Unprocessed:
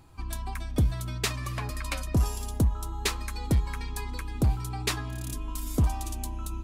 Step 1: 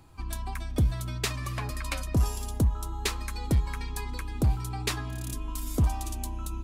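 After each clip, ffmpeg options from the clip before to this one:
-filter_complex "[0:a]acrossover=split=160[a][b];[b]acompressor=threshold=-26dB:ratio=2[c];[a][c]amix=inputs=2:normalize=0"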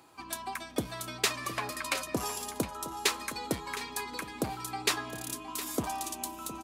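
-af "highpass=330,aecho=1:1:713:0.211,volume=3dB"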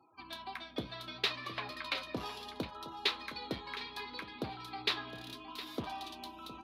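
-af "afftfilt=real='re*gte(hypot(re,im),0.002)':imag='im*gte(hypot(re,im),0.002)':win_size=1024:overlap=0.75,highshelf=f=5.5k:t=q:w=3:g=-13,flanger=delay=7.9:depth=9.2:regen=-67:speed=0.68:shape=triangular,volume=-2.5dB"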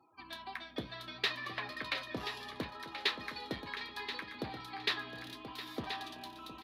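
-af "equalizer=f=1.8k:t=o:w=0.23:g=9,aecho=1:1:1030:0.335,volume=-1.5dB"

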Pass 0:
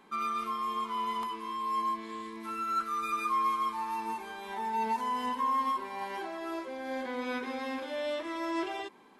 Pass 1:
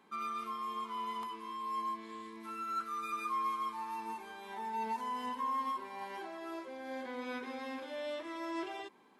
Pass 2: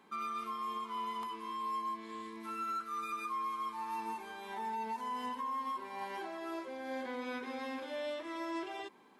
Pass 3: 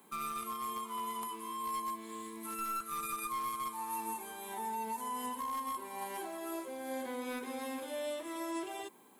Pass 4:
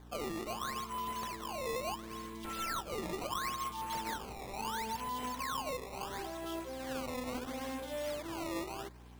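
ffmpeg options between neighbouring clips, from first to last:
-af "highpass=56,volume=-6dB"
-af "alimiter=level_in=9dB:limit=-24dB:level=0:latency=1:release=301,volume=-9dB,volume=2dB"
-filter_complex "[0:a]acrossover=split=330|1500|1900[a][b][c][d];[c]acrusher=bits=5:dc=4:mix=0:aa=0.000001[e];[d]aexciter=amount=8.3:drive=3.6:freq=7.4k[f];[a][b][e][f]amix=inputs=4:normalize=0,volume=1dB"
-af "acrusher=samples=16:mix=1:aa=0.000001:lfo=1:lforange=25.6:lforate=0.73,aeval=exprs='val(0)+0.00224*(sin(2*PI*60*n/s)+sin(2*PI*2*60*n/s)/2+sin(2*PI*3*60*n/s)/3+sin(2*PI*4*60*n/s)/4+sin(2*PI*5*60*n/s)/5)':c=same"

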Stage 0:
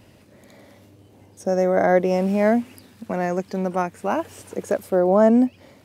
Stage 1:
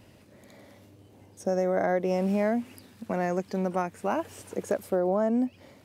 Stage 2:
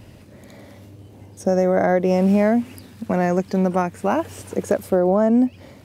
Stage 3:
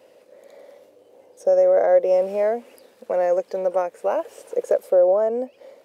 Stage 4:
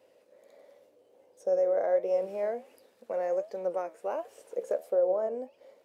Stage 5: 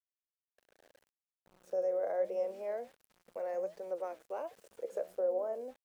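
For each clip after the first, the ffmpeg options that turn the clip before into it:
-af "acompressor=threshold=-18dB:ratio=6,volume=-3.5dB"
-af "lowshelf=f=160:g=8.5,volume=7dB"
-af "highpass=f=510:t=q:w=5.7,volume=-8.5dB"
-af "flanger=delay=8.9:depth=6.9:regen=73:speed=1.4:shape=triangular,volume=-6dB"
-filter_complex "[0:a]acrossover=split=200[a][b];[b]adelay=260[c];[a][c]amix=inputs=2:normalize=0,aeval=exprs='val(0)*gte(abs(val(0)),0.00266)':c=same,volume=-6.5dB"

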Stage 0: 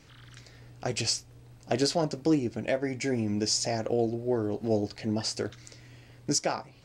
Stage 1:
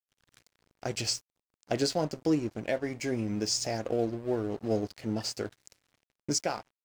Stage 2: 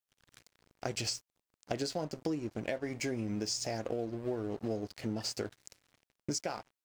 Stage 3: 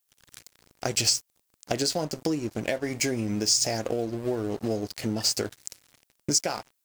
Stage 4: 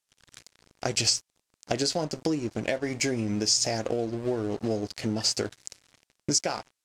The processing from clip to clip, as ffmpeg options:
-af "aeval=exprs='sgn(val(0))*max(abs(val(0))-0.00562,0)':c=same,volume=-1.5dB"
-af "acompressor=threshold=-34dB:ratio=6,volume=2dB"
-af "highshelf=f=5.2k:g=11.5,volume=7dB"
-af "lowpass=8k"

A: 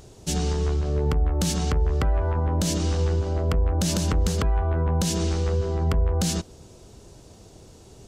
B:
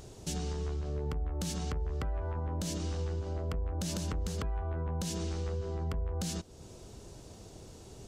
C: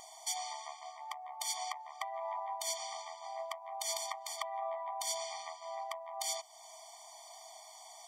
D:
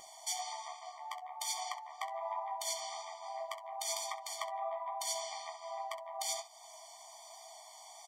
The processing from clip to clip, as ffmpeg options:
-af "acompressor=threshold=-38dB:ratio=2,volume=-2dB"
-af "afftfilt=real='re*eq(mod(floor(b*sr/1024/610),2),1)':imag='im*eq(mod(floor(b*sr/1024/610),2),1)':win_size=1024:overlap=0.75,volume=7.5dB"
-filter_complex "[0:a]flanger=delay=5.7:depth=8:regen=-39:speed=1.2:shape=triangular,asplit=2[a][b];[b]aecho=0:1:18|66:0.316|0.224[c];[a][c]amix=inputs=2:normalize=0,volume=3dB"

